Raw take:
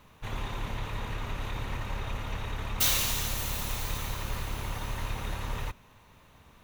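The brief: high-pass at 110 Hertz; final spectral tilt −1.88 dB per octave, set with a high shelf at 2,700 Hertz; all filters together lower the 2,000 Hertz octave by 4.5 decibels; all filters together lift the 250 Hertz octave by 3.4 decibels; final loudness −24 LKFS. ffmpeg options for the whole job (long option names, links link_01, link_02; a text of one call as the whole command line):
ffmpeg -i in.wav -af "highpass=110,equalizer=frequency=250:width_type=o:gain=5,equalizer=frequency=2000:width_type=o:gain=-8.5,highshelf=frequency=2700:gain=5,volume=6dB" out.wav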